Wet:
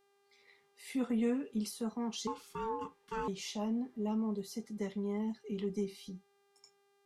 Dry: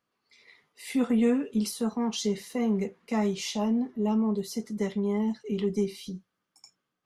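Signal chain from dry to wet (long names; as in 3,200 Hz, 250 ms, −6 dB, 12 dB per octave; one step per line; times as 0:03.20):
0:02.27–0:03.28: ring modulation 670 Hz
hum with harmonics 400 Hz, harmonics 35, −64 dBFS −6 dB per octave
level −8.5 dB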